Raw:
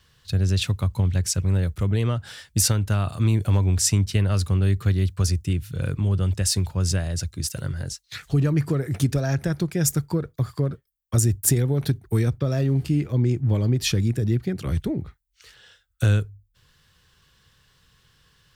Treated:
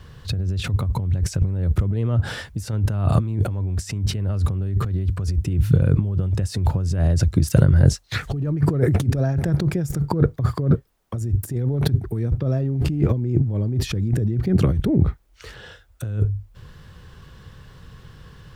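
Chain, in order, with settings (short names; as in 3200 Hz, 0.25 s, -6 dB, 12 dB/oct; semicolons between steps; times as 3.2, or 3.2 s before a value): negative-ratio compressor -31 dBFS, ratio -1; requantised 12-bit, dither triangular; tilt shelf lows +8.5 dB, about 1500 Hz; gain +3 dB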